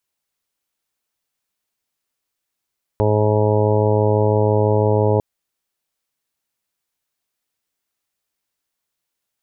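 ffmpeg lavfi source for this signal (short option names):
-f lavfi -i "aevalsrc='0.141*sin(2*PI*106*t)+0.0473*sin(2*PI*212*t)+0.0501*sin(2*PI*318*t)+0.119*sin(2*PI*424*t)+0.0891*sin(2*PI*530*t)+0.0562*sin(2*PI*636*t)+0.0168*sin(2*PI*742*t)+0.0501*sin(2*PI*848*t)+0.0355*sin(2*PI*954*t)':d=2.2:s=44100"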